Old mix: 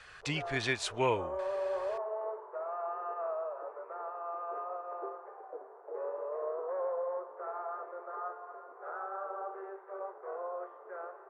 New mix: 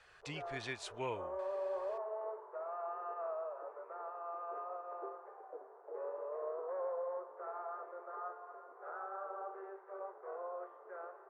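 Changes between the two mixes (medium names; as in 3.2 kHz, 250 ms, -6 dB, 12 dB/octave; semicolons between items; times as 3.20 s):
speech -10.5 dB; background -4.5 dB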